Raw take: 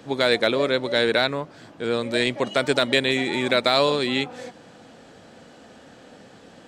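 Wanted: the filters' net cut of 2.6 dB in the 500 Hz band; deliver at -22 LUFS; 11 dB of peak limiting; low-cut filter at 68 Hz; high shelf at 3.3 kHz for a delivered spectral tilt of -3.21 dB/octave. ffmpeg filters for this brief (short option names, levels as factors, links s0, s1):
-af "highpass=68,equalizer=f=500:t=o:g=-3,highshelf=f=3300:g=-7,volume=2.66,alimiter=limit=0.316:level=0:latency=1"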